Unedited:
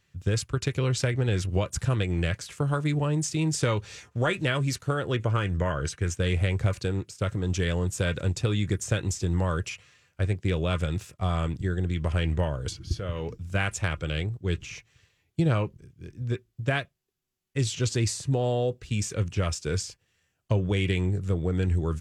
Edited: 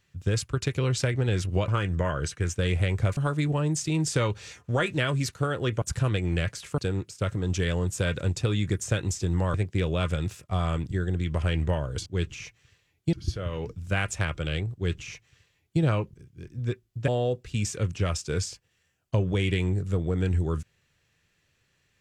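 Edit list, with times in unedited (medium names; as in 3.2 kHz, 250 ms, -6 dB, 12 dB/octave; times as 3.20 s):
1.68–2.64 s: swap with 5.29–6.78 s
9.54–10.24 s: delete
14.37–15.44 s: copy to 12.76 s
16.71–18.45 s: delete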